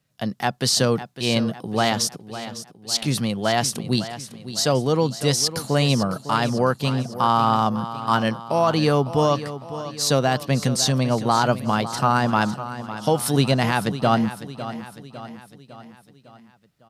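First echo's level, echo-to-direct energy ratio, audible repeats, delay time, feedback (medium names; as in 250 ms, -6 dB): -13.0 dB, -11.5 dB, 4, 554 ms, 52%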